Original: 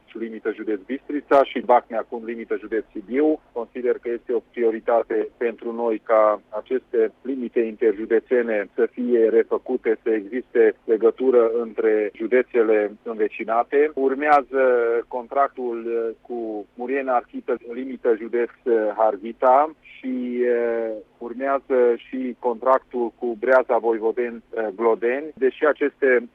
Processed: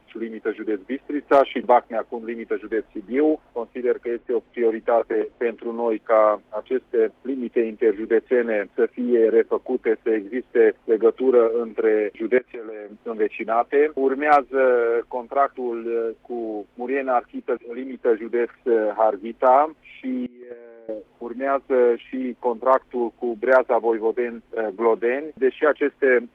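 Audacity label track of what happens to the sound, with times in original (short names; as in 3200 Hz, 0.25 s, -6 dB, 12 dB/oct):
4.180000	5.720000	low-pass opened by the level closes to 2400 Hz, open at -18 dBFS
12.380000	12.950000	compressor 20:1, threshold -30 dBFS
17.410000	18.040000	tone controls bass -4 dB, treble -6 dB
20.260000	20.890000	gate -16 dBFS, range -22 dB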